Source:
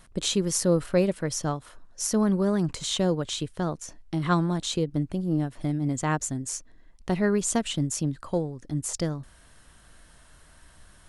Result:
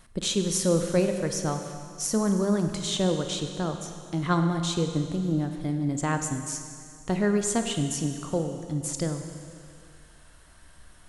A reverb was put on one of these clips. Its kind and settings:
four-comb reverb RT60 2.2 s, combs from 32 ms, DRR 6 dB
level −1 dB

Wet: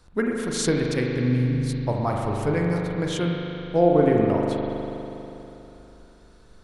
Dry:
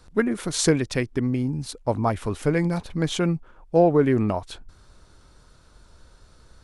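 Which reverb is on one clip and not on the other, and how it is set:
spring reverb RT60 3.3 s, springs 40 ms, chirp 30 ms, DRR −0.5 dB
level −3.5 dB

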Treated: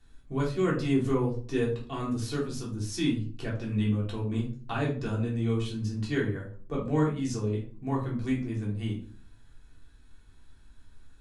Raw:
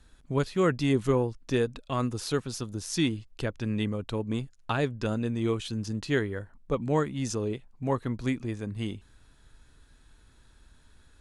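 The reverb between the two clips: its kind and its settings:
rectangular room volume 310 cubic metres, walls furnished, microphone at 3.4 metres
level −9 dB

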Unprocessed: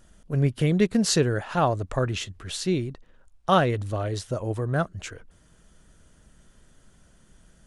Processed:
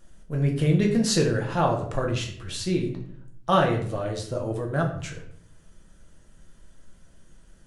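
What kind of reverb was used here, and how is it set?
rectangular room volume 93 cubic metres, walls mixed, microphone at 0.75 metres
level −3 dB

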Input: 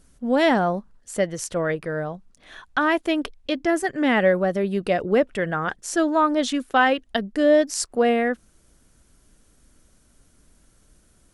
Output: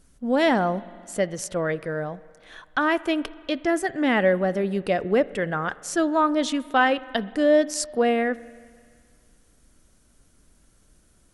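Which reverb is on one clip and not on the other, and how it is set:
spring reverb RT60 2.1 s, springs 43/56 ms, chirp 25 ms, DRR 18.5 dB
level −1.5 dB

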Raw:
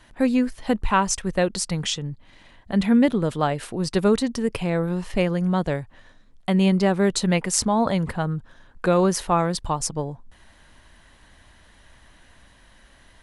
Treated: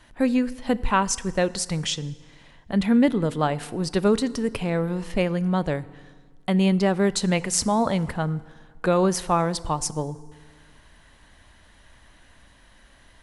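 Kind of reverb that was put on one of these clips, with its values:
feedback delay network reverb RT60 1.6 s, low-frequency decay 1.1×, high-frequency decay 0.8×, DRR 17 dB
level −1 dB

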